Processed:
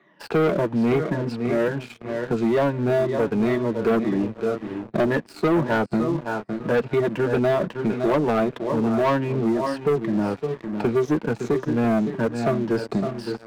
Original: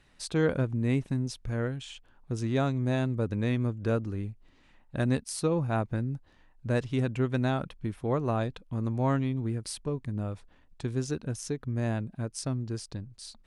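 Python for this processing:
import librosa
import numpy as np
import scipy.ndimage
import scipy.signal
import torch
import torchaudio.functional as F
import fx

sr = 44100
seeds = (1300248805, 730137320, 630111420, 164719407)

p1 = fx.spec_ripple(x, sr, per_octave=1.2, drift_hz=-2.0, depth_db=13)
p2 = scipy.signal.sosfilt(scipy.signal.butter(2, 1700.0, 'lowpass', fs=sr, output='sos'), p1)
p3 = fx.notch_comb(p2, sr, f0_hz=260.0)
p4 = fx.echo_feedback(p3, sr, ms=594, feedback_pct=33, wet_db=-18)
p5 = fx.rider(p4, sr, range_db=10, speed_s=2.0)
p6 = scipy.signal.sosfilt(scipy.signal.butter(4, 190.0, 'highpass', fs=sr, output='sos'), p5)
p7 = p6 + fx.echo_single(p6, sr, ms=561, db=-12.0, dry=0)
p8 = fx.leveller(p7, sr, passes=3)
p9 = fx.band_squash(p8, sr, depth_pct=40)
y = F.gain(torch.from_numpy(p9), 2.5).numpy()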